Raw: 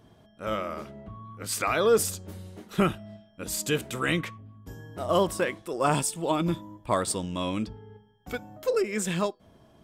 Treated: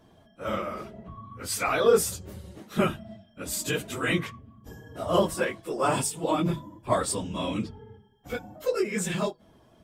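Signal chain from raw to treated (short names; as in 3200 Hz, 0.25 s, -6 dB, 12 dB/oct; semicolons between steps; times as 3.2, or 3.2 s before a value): phase scrambler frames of 50 ms; notches 50/100/150 Hz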